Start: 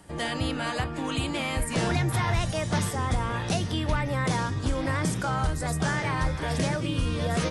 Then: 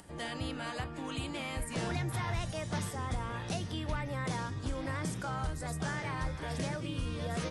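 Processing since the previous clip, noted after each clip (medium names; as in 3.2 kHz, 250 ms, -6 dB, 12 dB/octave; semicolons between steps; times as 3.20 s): upward compressor, threshold -40 dBFS; trim -9 dB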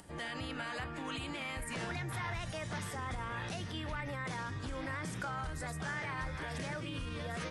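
peak limiter -32 dBFS, peak gain reduction 7 dB; dynamic bell 1.8 kHz, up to +7 dB, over -59 dBFS, Q 0.81; trim -1 dB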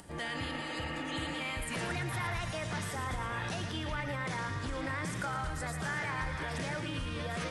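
thinning echo 114 ms, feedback 60%, level -8 dB; spectral replace 0.43–1.37 s, 280–2900 Hz before; trim +3 dB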